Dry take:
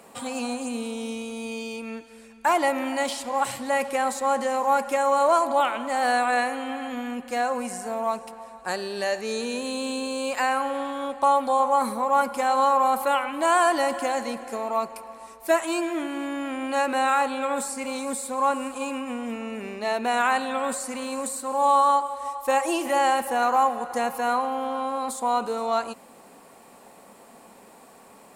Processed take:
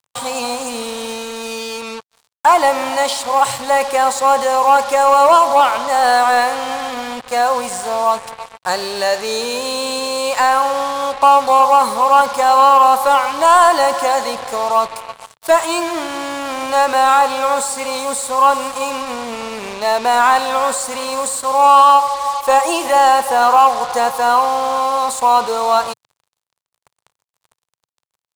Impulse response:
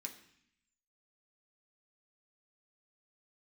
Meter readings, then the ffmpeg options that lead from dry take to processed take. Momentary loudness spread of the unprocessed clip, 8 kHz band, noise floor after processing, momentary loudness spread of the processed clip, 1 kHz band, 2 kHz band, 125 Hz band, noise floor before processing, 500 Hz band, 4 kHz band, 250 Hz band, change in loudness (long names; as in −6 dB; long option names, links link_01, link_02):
11 LU, +10.5 dB, −85 dBFS, 14 LU, +11.5 dB, +7.5 dB, can't be measured, −50 dBFS, +8.5 dB, +12.0 dB, +1.5 dB, +10.5 dB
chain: -af "acrusher=bits=5:mix=0:aa=0.5,equalizer=frequency=125:width_type=o:width=1:gain=7,equalizer=frequency=250:width_type=o:width=1:gain=-7,equalizer=frequency=500:width_type=o:width=1:gain=4,equalizer=frequency=1000:width_type=o:width=1:gain=9,equalizer=frequency=4000:width_type=o:width=1:gain=7,equalizer=frequency=8000:width_type=o:width=1:gain=5,acontrast=39,volume=-1dB"